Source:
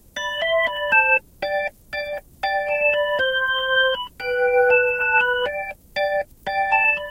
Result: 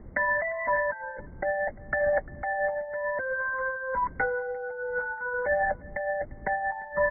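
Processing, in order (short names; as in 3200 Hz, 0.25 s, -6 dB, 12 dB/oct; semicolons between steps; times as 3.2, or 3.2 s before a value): negative-ratio compressor -29 dBFS, ratio -1; brick-wall FIR low-pass 2200 Hz; on a send: echo 0.348 s -23 dB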